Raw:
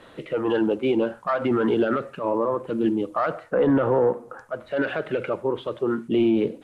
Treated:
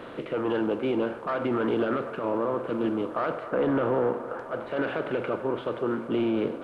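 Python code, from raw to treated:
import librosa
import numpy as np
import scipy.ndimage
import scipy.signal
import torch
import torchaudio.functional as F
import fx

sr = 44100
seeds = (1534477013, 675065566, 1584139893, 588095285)

y = fx.bin_compress(x, sr, power=0.6)
y = fx.echo_wet_bandpass(y, sr, ms=259, feedback_pct=85, hz=940.0, wet_db=-14)
y = y * 10.0 ** (-7.5 / 20.0)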